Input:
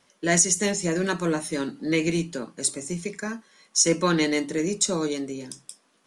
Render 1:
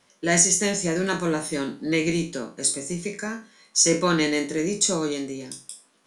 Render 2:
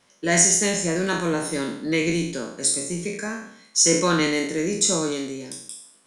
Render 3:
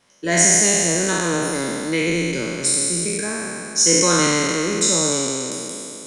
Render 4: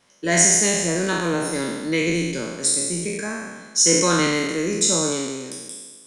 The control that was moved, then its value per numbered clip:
spectral sustain, RT60: 0.33 s, 0.68 s, 2.97 s, 1.43 s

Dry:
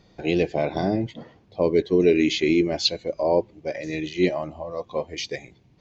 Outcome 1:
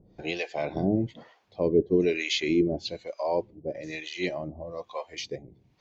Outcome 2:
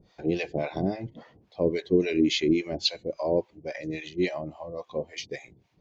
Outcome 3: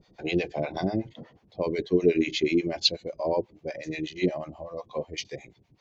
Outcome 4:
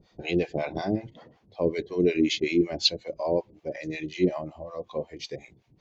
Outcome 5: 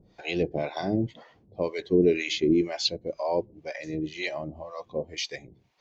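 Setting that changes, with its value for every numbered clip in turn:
harmonic tremolo, rate: 1.1 Hz, 3.6 Hz, 8.2 Hz, 5.4 Hz, 2 Hz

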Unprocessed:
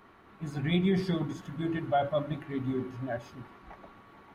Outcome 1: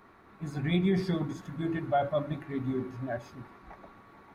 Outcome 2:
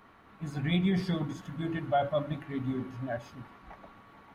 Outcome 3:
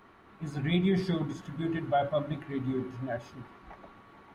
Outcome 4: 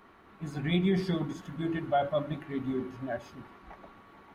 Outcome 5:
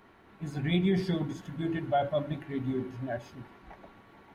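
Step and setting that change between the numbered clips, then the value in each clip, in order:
peaking EQ, frequency: 3 kHz, 370 Hz, 14 kHz, 120 Hz, 1.2 kHz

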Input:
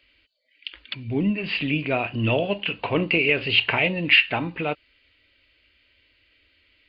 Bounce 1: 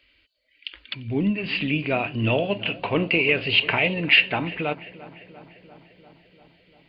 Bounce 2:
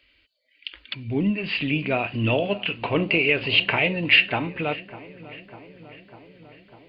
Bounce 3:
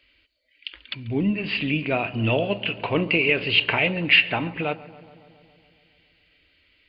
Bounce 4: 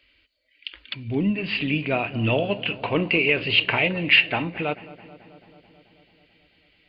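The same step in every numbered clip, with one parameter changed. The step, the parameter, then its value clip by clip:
filtered feedback delay, time: 346 ms, 599 ms, 139 ms, 218 ms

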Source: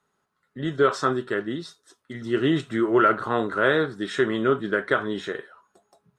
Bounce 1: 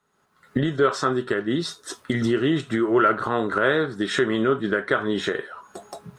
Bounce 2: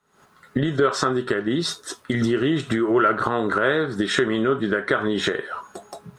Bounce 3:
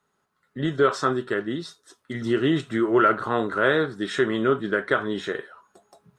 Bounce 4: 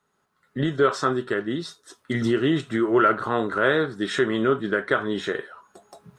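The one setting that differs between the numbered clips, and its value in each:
recorder AGC, rising by: 36 dB/s, 91 dB/s, 5.7 dB/s, 14 dB/s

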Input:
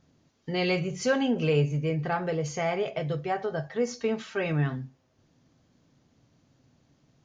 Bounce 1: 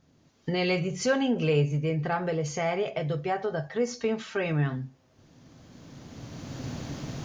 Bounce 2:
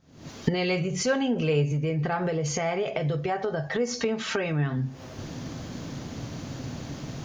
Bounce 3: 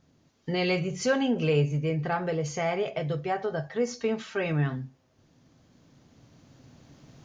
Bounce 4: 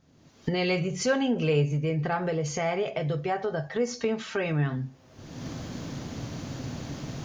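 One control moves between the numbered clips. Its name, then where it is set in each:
recorder AGC, rising by: 14 dB/s, 91 dB/s, 5 dB/s, 36 dB/s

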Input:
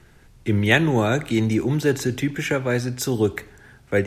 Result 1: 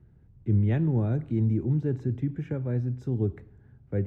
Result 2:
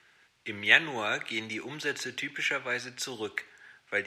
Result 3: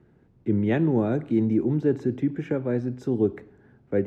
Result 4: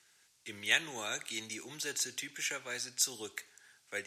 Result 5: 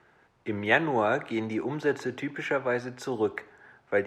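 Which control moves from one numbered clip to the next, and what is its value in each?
band-pass filter, frequency: 100 Hz, 2.6 kHz, 260 Hz, 6.9 kHz, 920 Hz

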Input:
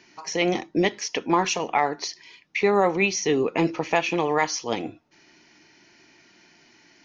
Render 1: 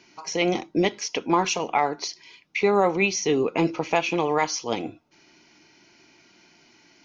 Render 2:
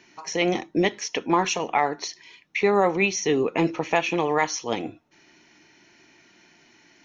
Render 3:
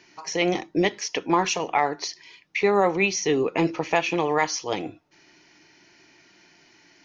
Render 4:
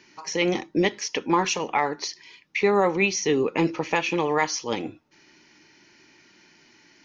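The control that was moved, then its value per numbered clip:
band-stop, frequency: 1.8 kHz, 4.8 kHz, 230 Hz, 690 Hz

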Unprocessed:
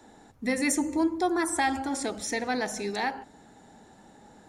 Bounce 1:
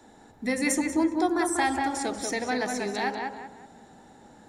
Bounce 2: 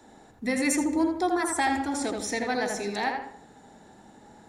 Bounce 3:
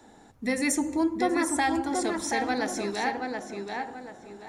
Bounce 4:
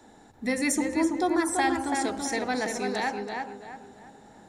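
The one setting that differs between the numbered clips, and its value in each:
tape echo, time: 190 ms, 81 ms, 730 ms, 334 ms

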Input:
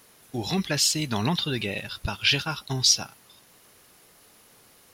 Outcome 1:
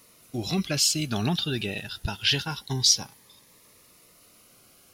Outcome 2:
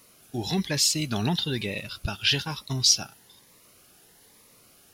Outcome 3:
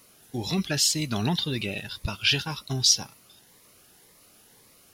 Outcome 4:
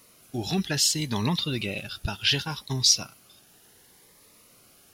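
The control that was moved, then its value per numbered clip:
Shepard-style phaser, rate: 0.25 Hz, 1.1 Hz, 1.9 Hz, 0.68 Hz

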